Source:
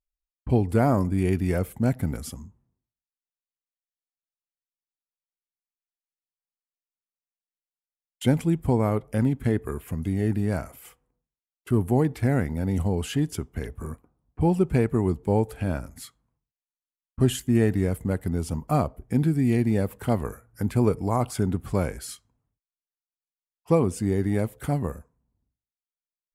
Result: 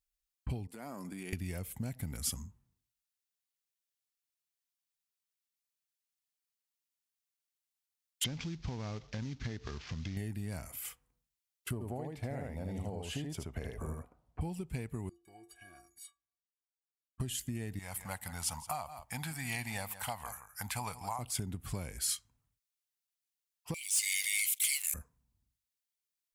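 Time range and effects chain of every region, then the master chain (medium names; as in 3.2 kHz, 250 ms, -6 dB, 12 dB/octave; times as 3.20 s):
0.67–1.33 s: expander -29 dBFS + high-pass 190 Hz 24 dB/octave + compression, threshold -34 dBFS
8.24–10.17 s: CVSD coder 32 kbps + compression 2.5:1, threshold -31 dBFS
11.73–14.41 s: low-pass 3.8 kHz 6 dB/octave + peaking EQ 610 Hz +13 dB 1.1 oct + delay 77 ms -3 dB
15.09–17.20 s: high-pass 140 Hz 6 dB/octave + compression 3:1, threshold -26 dBFS + inharmonic resonator 340 Hz, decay 0.27 s, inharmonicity 0.03
17.79–21.19 s: resonant low shelf 560 Hz -13 dB, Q 3 + delay 169 ms -16 dB
23.74–24.94 s: rippled Chebyshev high-pass 2.1 kHz, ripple 3 dB + waveshaping leveller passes 3 + level flattener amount 50%
whole clip: dynamic bell 1.4 kHz, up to -7 dB, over -47 dBFS, Q 2; compression 10:1, threshold -30 dBFS; amplifier tone stack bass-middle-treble 5-5-5; trim +11.5 dB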